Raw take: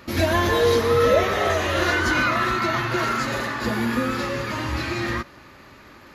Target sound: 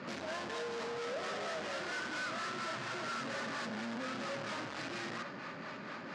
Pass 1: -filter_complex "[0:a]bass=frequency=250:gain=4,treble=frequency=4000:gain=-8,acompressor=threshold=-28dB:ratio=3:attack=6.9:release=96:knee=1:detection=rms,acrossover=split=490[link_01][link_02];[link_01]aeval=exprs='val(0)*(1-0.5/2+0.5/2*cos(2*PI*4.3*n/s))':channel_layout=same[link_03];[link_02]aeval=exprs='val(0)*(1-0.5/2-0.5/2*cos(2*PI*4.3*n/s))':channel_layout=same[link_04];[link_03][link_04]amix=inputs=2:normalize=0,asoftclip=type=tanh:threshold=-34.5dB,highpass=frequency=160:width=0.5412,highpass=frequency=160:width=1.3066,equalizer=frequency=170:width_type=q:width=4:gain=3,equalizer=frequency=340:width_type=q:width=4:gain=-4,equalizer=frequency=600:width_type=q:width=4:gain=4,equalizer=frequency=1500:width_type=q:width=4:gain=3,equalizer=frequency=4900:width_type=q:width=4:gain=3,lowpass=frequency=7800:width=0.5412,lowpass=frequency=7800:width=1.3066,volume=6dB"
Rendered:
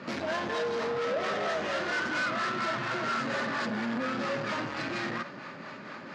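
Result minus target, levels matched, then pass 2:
soft clipping: distortion −5 dB
-filter_complex "[0:a]bass=frequency=250:gain=4,treble=frequency=4000:gain=-8,acompressor=threshold=-28dB:ratio=3:attack=6.9:release=96:knee=1:detection=rms,acrossover=split=490[link_01][link_02];[link_01]aeval=exprs='val(0)*(1-0.5/2+0.5/2*cos(2*PI*4.3*n/s))':channel_layout=same[link_03];[link_02]aeval=exprs='val(0)*(1-0.5/2-0.5/2*cos(2*PI*4.3*n/s))':channel_layout=same[link_04];[link_03][link_04]amix=inputs=2:normalize=0,asoftclip=type=tanh:threshold=-45dB,highpass=frequency=160:width=0.5412,highpass=frequency=160:width=1.3066,equalizer=frequency=170:width_type=q:width=4:gain=3,equalizer=frequency=340:width_type=q:width=4:gain=-4,equalizer=frequency=600:width_type=q:width=4:gain=4,equalizer=frequency=1500:width_type=q:width=4:gain=3,equalizer=frequency=4900:width_type=q:width=4:gain=3,lowpass=frequency=7800:width=0.5412,lowpass=frequency=7800:width=1.3066,volume=6dB"

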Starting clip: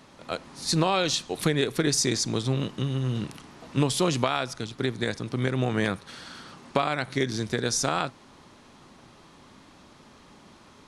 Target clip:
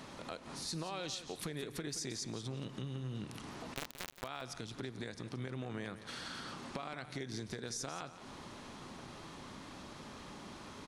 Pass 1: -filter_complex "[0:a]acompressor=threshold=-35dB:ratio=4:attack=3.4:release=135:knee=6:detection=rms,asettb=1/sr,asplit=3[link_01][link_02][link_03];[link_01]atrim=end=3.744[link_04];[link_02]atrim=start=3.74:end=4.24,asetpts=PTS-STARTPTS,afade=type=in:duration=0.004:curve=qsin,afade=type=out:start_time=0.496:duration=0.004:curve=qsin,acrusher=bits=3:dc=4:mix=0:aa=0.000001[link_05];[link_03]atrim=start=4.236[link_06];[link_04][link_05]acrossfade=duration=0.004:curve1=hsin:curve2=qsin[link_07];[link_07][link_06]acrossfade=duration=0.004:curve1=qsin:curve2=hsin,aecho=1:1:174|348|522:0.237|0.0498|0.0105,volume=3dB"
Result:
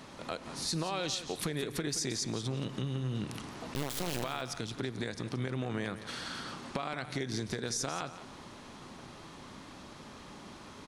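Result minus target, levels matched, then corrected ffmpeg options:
downward compressor: peak gain reduction −7 dB
-filter_complex "[0:a]acompressor=threshold=-44dB:ratio=4:attack=3.4:release=135:knee=6:detection=rms,asettb=1/sr,asplit=3[link_01][link_02][link_03];[link_01]atrim=end=3.744[link_04];[link_02]atrim=start=3.74:end=4.24,asetpts=PTS-STARTPTS,afade=type=in:duration=0.004:curve=qsin,afade=type=out:start_time=0.496:duration=0.004:curve=qsin,acrusher=bits=3:dc=4:mix=0:aa=0.000001[link_05];[link_03]atrim=start=4.236[link_06];[link_04][link_05]acrossfade=duration=0.004:curve1=hsin:curve2=qsin[link_07];[link_07][link_06]acrossfade=duration=0.004:curve1=qsin:curve2=hsin,aecho=1:1:174|348|522:0.237|0.0498|0.0105,volume=3dB"

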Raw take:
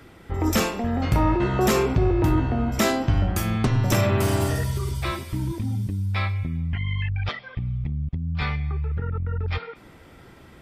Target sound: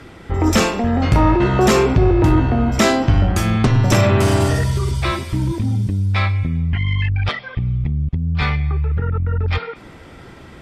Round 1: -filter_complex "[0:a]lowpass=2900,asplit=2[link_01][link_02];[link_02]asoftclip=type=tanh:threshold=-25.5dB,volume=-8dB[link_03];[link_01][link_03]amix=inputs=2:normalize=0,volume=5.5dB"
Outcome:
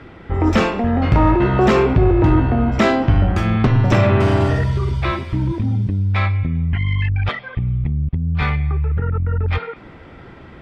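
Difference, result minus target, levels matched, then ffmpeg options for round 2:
8,000 Hz band −14.5 dB
-filter_complex "[0:a]lowpass=8800,asplit=2[link_01][link_02];[link_02]asoftclip=type=tanh:threshold=-25.5dB,volume=-8dB[link_03];[link_01][link_03]amix=inputs=2:normalize=0,volume=5.5dB"

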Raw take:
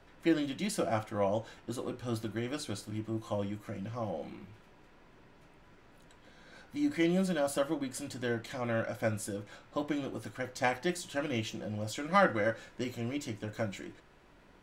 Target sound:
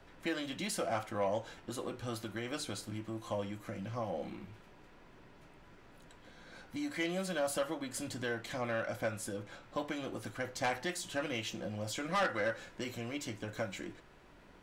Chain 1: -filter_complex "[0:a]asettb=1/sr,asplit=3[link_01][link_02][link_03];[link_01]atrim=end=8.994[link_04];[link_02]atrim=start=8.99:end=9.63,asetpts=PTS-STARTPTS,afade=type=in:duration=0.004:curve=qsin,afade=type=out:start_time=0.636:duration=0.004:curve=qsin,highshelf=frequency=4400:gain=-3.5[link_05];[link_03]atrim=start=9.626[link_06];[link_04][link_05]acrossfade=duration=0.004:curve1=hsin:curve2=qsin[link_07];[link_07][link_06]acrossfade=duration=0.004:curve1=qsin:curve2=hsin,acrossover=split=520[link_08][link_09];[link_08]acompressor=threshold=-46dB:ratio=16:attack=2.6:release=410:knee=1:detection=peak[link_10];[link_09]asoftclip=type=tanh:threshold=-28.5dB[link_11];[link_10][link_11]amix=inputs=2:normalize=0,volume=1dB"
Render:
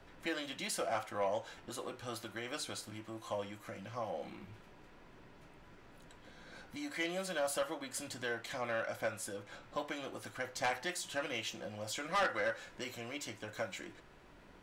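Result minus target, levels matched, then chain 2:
downward compressor: peak gain reduction +8 dB
-filter_complex "[0:a]asettb=1/sr,asplit=3[link_01][link_02][link_03];[link_01]atrim=end=8.994[link_04];[link_02]atrim=start=8.99:end=9.63,asetpts=PTS-STARTPTS,afade=type=in:duration=0.004:curve=qsin,afade=type=out:start_time=0.636:duration=0.004:curve=qsin,highshelf=frequency=4400:gain=-3.5[link_05];[link_03]atrim=start=9.626[link_06];[link_04][link_05]acrossfade=duration=0.004:curve1=hsin:curve2=qsin[link_07];[link_07][link_06]acrossfade=duration=0.004:curve1=qsin:curve2=hsin,acrossover=split=520[link_08][link_09];[link_08]acompressor=threshold=-37.5dB:ratio=16:attack=2.6:release=410:knee=1:detection=peak[link_10];[link_09]asoftclip=type=tanh:threshold=-28.5dB[link_11];[link_10][link_11]amix=inputs=2:normalize=0,volume=1dB"

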